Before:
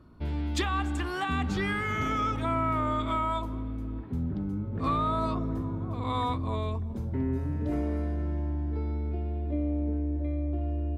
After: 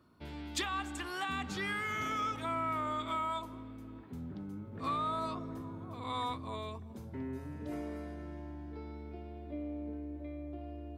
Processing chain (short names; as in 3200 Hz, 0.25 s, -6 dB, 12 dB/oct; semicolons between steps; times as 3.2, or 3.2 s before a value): HPF 77 Hz; tilt +2 dB/oct; gain -6 dB